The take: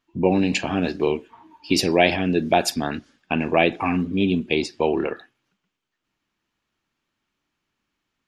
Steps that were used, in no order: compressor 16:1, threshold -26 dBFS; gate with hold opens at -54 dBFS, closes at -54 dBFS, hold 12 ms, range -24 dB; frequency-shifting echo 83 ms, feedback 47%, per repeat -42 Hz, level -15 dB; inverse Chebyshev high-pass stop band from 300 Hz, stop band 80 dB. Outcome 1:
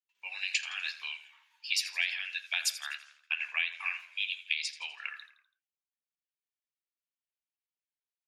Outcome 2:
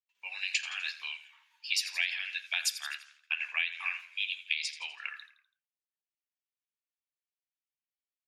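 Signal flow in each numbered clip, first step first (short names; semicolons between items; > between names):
gate with hold > inverse Chebyshev high-pass > compressor > frequency-shifting echo; gate with hold > frequency-shifting echo > inverse Chebyshev high-pass > compressor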